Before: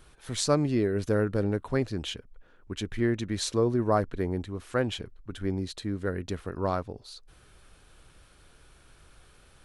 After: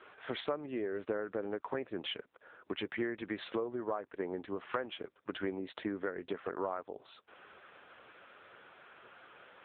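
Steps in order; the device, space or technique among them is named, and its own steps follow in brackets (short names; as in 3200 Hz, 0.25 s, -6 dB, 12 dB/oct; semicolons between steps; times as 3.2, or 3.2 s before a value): voicemail (BPF 440–2600 Hz; compressor 8:1, threshold -43 dBFS, peak gain reduction 22 dB; gain +10.5 dB; AMR-NB 6.7 kbps 8000 Hz)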